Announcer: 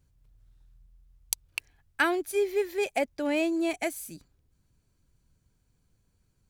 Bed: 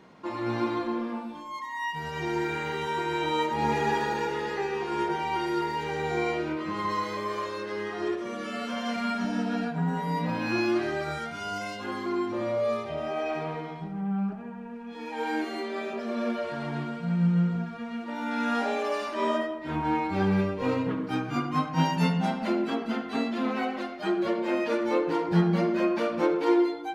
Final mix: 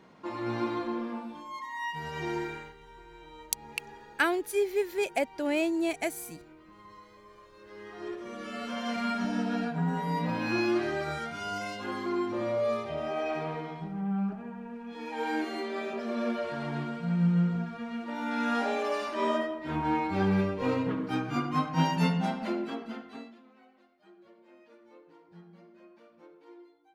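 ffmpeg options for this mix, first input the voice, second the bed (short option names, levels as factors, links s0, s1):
-filter_complex "[0:a]adelay=2200,volume=0.891[s0];[1:a]volume=7.94,afade=t=out:st=2.31:d=0.43:silence=0.105925,afade=t=in:st=7.52:d=1.48:silence=0.0891251,afade=t=out:st=22.07:d=1.35:silence=0.0375837[s1];[s0][s1]amix=inputs=2:normalize=0"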